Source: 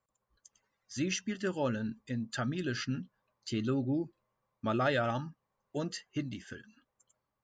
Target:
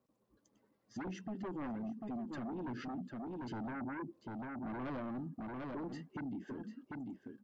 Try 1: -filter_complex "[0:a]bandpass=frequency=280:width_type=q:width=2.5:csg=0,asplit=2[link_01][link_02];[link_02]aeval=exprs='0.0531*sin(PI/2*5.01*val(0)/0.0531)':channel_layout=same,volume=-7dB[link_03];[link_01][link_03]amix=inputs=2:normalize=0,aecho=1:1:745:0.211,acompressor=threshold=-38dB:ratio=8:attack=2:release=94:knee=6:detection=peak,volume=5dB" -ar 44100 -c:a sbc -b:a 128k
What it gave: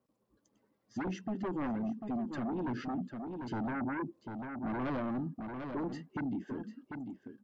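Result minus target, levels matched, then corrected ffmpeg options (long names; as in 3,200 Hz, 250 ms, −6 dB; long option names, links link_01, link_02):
downward compressor: peak gain reduction −6 dB
-filter_complex "[0:a]bandpass=frequency=280:width_type=q:width=2.5:csg=0,asplit=2[link_01][link_02];[link_02]aeval=exprs='0.0531*sin(PI/2*5.01*val(0)/0.0531)':channel_layout=same,volume=-7dB[link_03];[link_01][link_03]amix=inputs=2:normalize=0,aecho=1:1:745:0.211,acompressor=threshold=-45dB:ratio=8:attack=2:release=94:knee=6:detection=peak,volume=5dB" -ar 44100 -c:a sbc -b:a 128k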